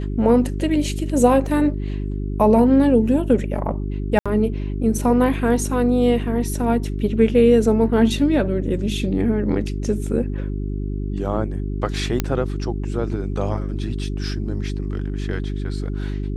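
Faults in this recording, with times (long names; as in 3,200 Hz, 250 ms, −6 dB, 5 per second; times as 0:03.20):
mains hum 50 Hz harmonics 8 −25 dBFS
0:01.46: drop-out 2.1 ms
0:04.19–0:04.26: drop-out 66 ms
0:12.20: click −6 dBFS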